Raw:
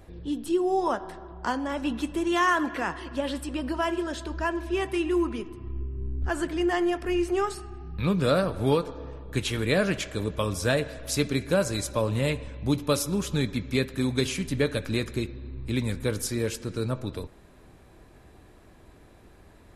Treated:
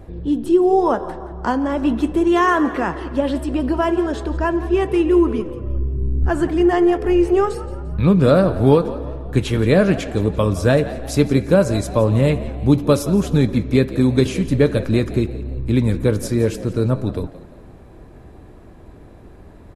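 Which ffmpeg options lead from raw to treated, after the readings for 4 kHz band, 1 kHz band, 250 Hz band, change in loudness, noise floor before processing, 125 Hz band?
+1.0 dB, +7.5 dB, +11.0 dB, +9.5 dB, −54 dBFS, +11.5 dB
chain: -filter_complex "[0:a]tiltshelf=frequency=1300:gain=6,asplit=4[link_01][link_02][link_03][link_04];[link_02]adelay=173,afreqshift=76,volume=-17dB[link_05];[link_03]adelay=346,afreqshift=152,volume=-24.7dB[link_06];[link_04]adelay=519,afreqshift=228,volume=-32.5dB[link_07];[link_01][link_05][link_06][link_07]amix=inputs=4:normalize=0,volume=5.5dB"

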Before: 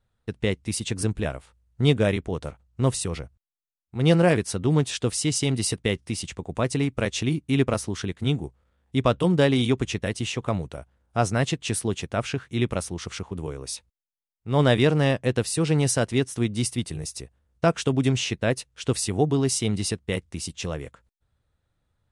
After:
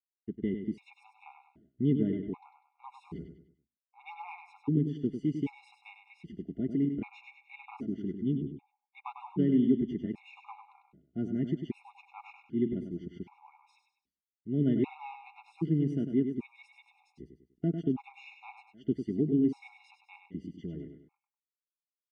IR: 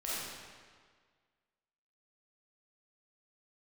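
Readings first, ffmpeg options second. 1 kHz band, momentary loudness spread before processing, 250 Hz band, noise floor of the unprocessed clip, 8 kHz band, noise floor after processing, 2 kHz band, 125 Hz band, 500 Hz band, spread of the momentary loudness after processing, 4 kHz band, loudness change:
−15.5 dB, 13 LU, −4.5 dB, below −85 dBFS, below −40 dB, below −85 dBFS, −20.5 dB, −12.0 dB, −13.5 dB, 21 LU, below −25 dB, −7.5 dB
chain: -filter_complex "[0:a]acrusher=bits=9:mix=0:aa=0.000001,asplit=3[link_01][link_02][link_03];[link_01]bandpass=frequency=300:width_type=q:width=8,volume=0dB[link_04];[link_02]bandpass=frequency=870:width_type=q:width=8,volume=-6dB[link_05];[link_03]bandpass=frequency=2240:width_type=q:width=8,volume=-9dB[link_06];[link_04][link_05][link_06]amix=inputs=3:normalize=0,aemphasis=mode=reproduction:type=riaa,aecho=1:1:5:0.63,aecho=1:1:99|198|297|396:0.422|0.164|0.0641|0.025,afftfilt=real='re*gt(sin(2*PI*0.64*pts/sr)*(1-2*mod(floor(b*sr/1024/710),2)),0)':imag='im*gt(sin(2*PI*0.64*pts/sr)*(1-2*mod(floor(b*sr/1024/710),2)),0)':win_size=1024:overlap=0.75"

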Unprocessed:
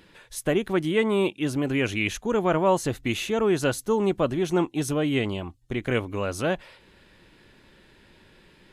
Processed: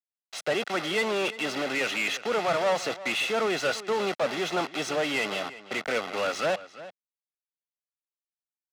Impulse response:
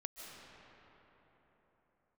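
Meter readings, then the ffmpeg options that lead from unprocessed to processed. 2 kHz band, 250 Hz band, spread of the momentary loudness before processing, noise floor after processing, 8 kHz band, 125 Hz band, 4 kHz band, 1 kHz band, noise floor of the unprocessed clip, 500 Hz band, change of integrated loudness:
+2.5 dB, −10.0 dB, 8 LU, below −85 dBFS, −1.5 dB, −15.0 dB, +3.5 dB, 0.0 dB, −57 dBFS, −3.0 dB, −2.5 dB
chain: -filter_complex "[0:a]acrossover=split=130|1400|4500[link_01][link_02][link_03][link_04];[link_01]acompressor=threshold=-48dB:ratio=6[link_05];[link_05][link_02][link_03][link_04]amix=inputs=4:normalize=0,acrusher=bits=5:mix=0:aa=0.000001,acrossover=split=180 6000:gain=0.224 1 0.158[link_06][link_07][link_08];[link_06][link_07][link_08]amix=inputs=3:normalize=0,aecho=1:1:1.5:0.52,asplit=2[link_09][link_10];[link_10]highpass=frequency=720:poles=1,volume=22dB,asoftclip=type=tanh:threshold=-9.5dB[link_11];[link_09][link_11]amix=inputs=2:normalize=0,lowpass=frequency=5900:poles=1,volume=-6dB,highpass=98,highshelf=frequency=11000:gain=4.5,aecho=1:1:346:0.158,adynamicsmooth=sensitivity=4:basefreq=5400,volume=-8.5dB"

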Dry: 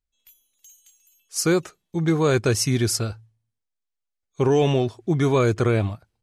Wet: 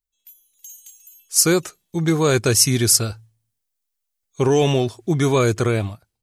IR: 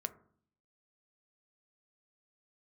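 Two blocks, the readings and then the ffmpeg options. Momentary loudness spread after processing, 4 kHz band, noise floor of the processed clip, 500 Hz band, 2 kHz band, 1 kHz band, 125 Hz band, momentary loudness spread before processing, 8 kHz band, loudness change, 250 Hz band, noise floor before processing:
9 LU, +7.5 dB, −78 dBFS, +2.0 dB, +3.0 dB, +2.0 dB, +1.5 dB, 7 LU, +10.5 dB, +4.0 dB, +2.0 dB, −82 dBFS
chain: -af "dynaudnorm=framelen=260:gausssize=5:maxgain=11dB,crystalizer=i=2:c=0,volume=-6dB"

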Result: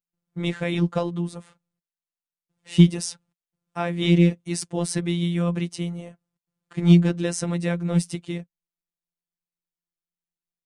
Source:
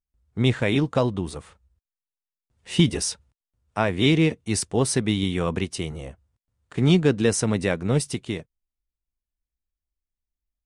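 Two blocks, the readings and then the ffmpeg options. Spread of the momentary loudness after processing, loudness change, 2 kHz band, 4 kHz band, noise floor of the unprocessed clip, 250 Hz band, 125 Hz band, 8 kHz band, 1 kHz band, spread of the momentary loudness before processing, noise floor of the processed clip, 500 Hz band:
15 LU, 0.0 dB, −4.5 dB, −4.5 dB, below −85 dBFS, +1.5 dB, +2.0 dB, −4.5 dB, −4.0 dB, 15 LU, below −85 dBFS, −4.0 dB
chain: -af "lowshelf=frequency=110:width_type=q:width=3:gain=-12.5,afftfilt=real='hypot(re,im)*cos(PI*b)':imag='0':win_size=1024:overlap=0.75,volume=-1dB"

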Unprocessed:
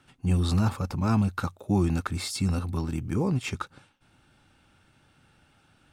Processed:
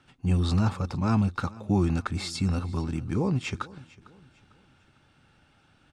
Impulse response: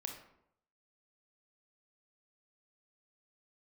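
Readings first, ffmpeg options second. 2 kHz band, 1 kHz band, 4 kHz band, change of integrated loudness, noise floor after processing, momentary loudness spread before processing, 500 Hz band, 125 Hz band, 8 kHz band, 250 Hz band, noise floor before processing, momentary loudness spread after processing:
0.0 dB, 0.0 dB, −0.5 dB, 0.0 dB, −64 dBFS, 8 LU, 0.0 dB, 0.0 dB, −3.5 dB, 0.0 dB, −64 dBFS, 8 LU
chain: -filter_complex "[0:a]lowpass=7100,asplit=2[link_01][link_02];[link_02]aecho=0:1:451|902|1353:0.0891|0.033|0.0122[link_03];[link_01][link_03]amix=inputs=2:normalize=0"

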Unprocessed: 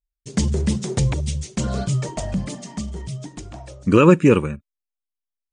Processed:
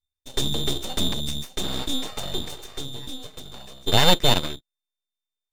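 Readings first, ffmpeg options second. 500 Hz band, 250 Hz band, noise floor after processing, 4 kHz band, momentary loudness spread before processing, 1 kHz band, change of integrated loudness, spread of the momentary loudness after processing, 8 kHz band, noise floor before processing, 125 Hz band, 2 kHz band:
−8.5 dB, −11.0 dB, below −85 dBFS, +14.0 dB, 19 LU, −0.5 dB, −4.0 dB, 19 LU, +0.5 dB, below −85 dBFS, −9.5 dB, −1.5 dB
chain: -af "aeval=exprs='val(0)*sin(2*PI*1800*n/s)':channel_layout=same,aeval=exprs='abs(val(0))':channel_layout=same"

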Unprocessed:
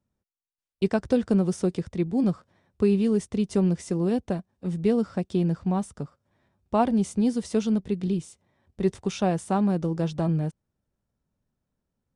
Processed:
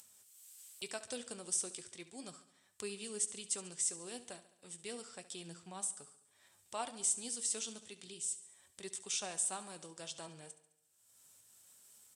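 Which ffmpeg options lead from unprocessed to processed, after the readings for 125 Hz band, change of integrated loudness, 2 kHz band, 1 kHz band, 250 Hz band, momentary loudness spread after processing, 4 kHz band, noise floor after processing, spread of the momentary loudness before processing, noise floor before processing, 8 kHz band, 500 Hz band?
−31.5 dB, −14.0 dB, −9.0 dB, −16.5 dB, −29.0 dB, 19 LU, −1.5 dB, −72 dBFS, 6 LU, −84 dBFS, +8.5 dB, −21.5 dB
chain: -af "equalizer=frequency=100:width_type=o:width=0.33:gain=10,equalizer=frequency=200:width_type=o:width=0.33:gain=-4,equalizer=frequency=3150:width_type=o:width=0.33:gain=3,equalizer=frequency=8000:width_type=o:width=0.33:gain=11,acompressor=mode=upward:threshold=-30dB:ratio=2.5,aderivative,flanger=delay=4.7:depth=4.1:regen=75:speed=0.33:shape=sinusoidal,aecho=1:1:70|140|210|280|350|420:0.178|0.103|0.0598|0.0347|0.0201|0.0117,aresample=32000,aresample=44100,volume=6dB"

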